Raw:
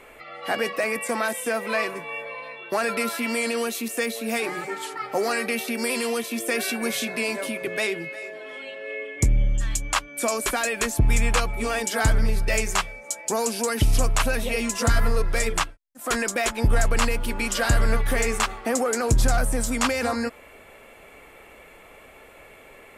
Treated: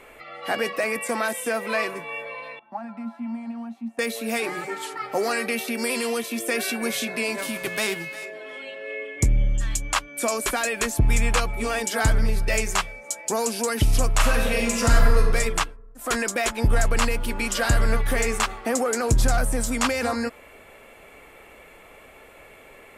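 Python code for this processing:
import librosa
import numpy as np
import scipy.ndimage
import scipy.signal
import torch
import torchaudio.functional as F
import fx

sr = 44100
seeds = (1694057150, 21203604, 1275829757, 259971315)

y = fx.double_bandpass(x, sr, hz=430.0, octaves=1.8, at=(2.59, 3.99))
y = fx.envelope_flatten(y, sr, power=0.6, at=(7.37, 8.24), fade=0.02)
y = fx.reverb_throw(y, sr, start_s=14.14, length_s=1.15, rt60_s=1.1, drr_db=1.5)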